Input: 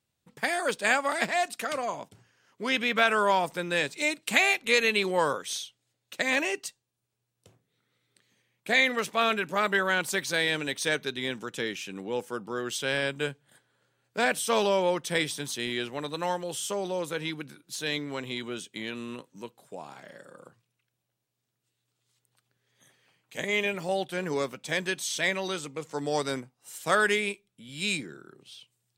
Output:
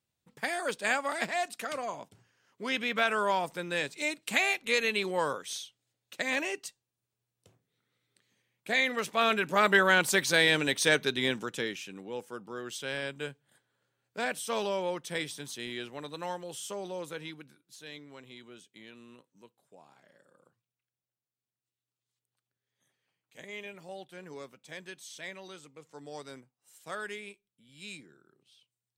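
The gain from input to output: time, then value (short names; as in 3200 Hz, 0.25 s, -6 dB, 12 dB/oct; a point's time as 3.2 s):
8.82 s -4.5 dB
9.73 s +3 dB
11.28 s +3 dB
12.03 s -7 dB
17.11 s -7 dB
17.76 s -15 dB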